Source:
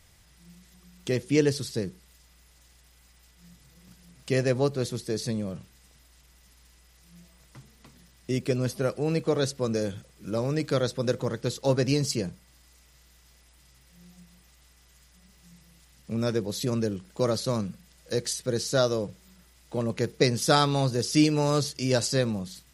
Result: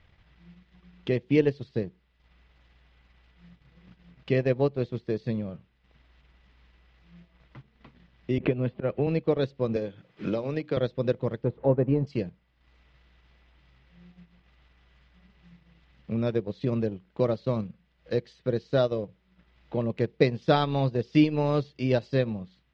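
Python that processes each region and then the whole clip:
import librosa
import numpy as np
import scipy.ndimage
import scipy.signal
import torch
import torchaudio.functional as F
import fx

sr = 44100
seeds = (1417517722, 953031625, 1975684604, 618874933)

y = fx.chain(x, sr, fx.lowpass(hz=3500.0, slope=24),
    fx.auto_swell(attack_ms=119.0),
    fx.band_squash(depth_pct=100), at=(8.38, 9.07))
y = fx.chain(y, sr, fx.low_shelf(hz=170.0, db=-7.5),
    fx.hum_notches(base_hz=60, count=5),
    fx.band_squash(depth_pct=100), at=(9.76, 10.77))
y = fx.chain(y, sr, fx.zero_step(step_db=-36.5),
    fx.lowpass(hz=1100.0, slope=12), at=(11.44, 12.07))
y = scipy.signal.sosfilt(scipy.signal.butter(4, 3300.0, 'lowpass', fs=sr, output='sos'), y)
y = fx.transient(y, sr, attack_db=2, sustain_db=-10)
y = fx.dynamic_eq(y, sr, hz=1400.0, q=1.9, threshold_db=-48.0, ratio=4.0, max_db=-6)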